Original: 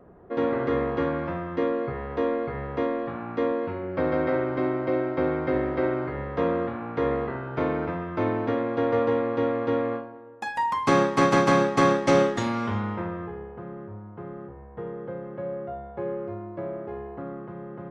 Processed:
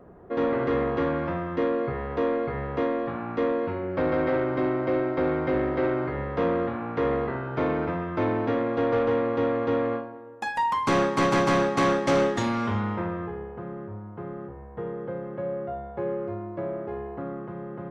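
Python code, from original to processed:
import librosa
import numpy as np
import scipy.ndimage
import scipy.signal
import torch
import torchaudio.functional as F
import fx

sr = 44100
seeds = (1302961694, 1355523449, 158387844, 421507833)

y = 10.0 ** (-19.0 / 20.0) * np.tanh(x / 10.0 ** (-19.0 / 20.0))
y = y * 10.0 ** (2.0 / 20.0)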